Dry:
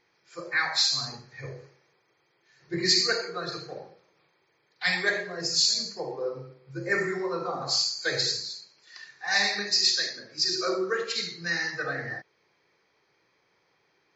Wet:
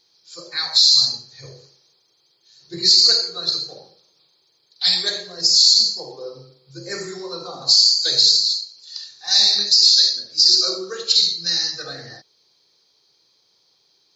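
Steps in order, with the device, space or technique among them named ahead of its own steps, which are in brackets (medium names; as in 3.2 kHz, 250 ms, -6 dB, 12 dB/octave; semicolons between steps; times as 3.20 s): over-bright horn tweeter (resonant high shelf 2.9 kHz +12 dB, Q 3; peak limiter -2.5 dBFS, peak gain reduction 10 dB); trim -1.5 dB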